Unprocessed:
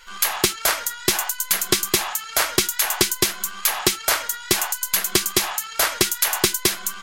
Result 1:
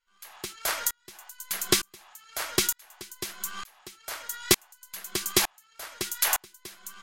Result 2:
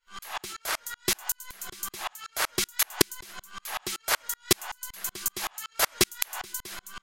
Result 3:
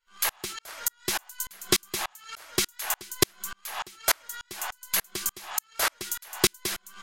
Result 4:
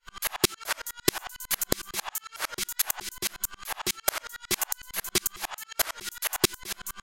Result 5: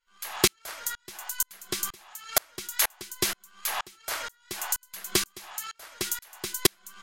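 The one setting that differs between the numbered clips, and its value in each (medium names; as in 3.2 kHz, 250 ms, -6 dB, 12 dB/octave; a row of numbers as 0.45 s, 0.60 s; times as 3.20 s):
sawtooth tremolo in dB, rate: 1.1 Hz, 5.3 Hz, 3.4 Hz, 11 Hz, 2.1 Hz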